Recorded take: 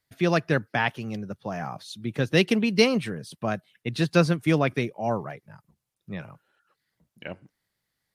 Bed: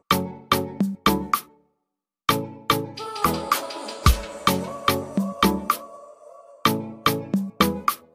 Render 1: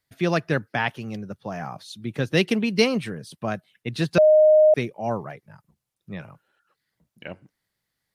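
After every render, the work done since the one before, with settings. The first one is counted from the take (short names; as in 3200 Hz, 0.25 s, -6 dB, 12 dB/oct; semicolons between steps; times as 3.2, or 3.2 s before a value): 4.18–4.74 bleep 617 Hz -11 dBFS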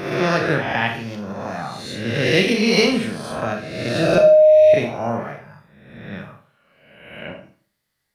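spectral swells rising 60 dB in 1.14 s; Schroeder reverb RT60 0.45 s, combs from 27 ms, DRR 3 dB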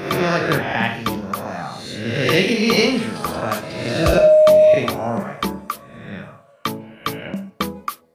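add bed -4.5 dB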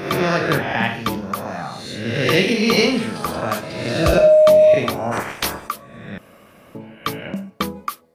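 5.11–5.67 spectral limiter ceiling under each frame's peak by 26 dB; 6.18–6.75 room tone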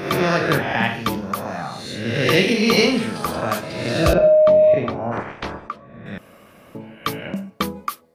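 4.13–6.06 tape spacing loss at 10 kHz 32 dB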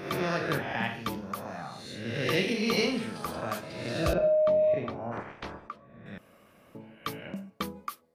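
gain -11 dB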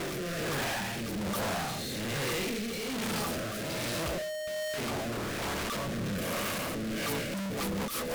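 infinite clipping; rotary speaker horn 1.2 Hz, later 6 Hz, at 6.82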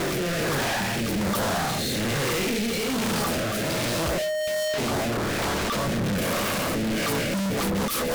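sample leveller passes 3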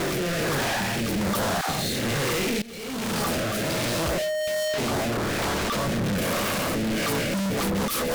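1.61–2.03 dispersion lows, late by 81 ms, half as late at 510 Hz; 2.62–3.26 fade in, from -20 dB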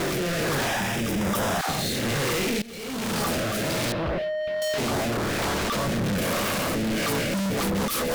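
0.67–1.59 notch 4300 Hz, Q 5.5; 3.92–4.62 air absorption 360 m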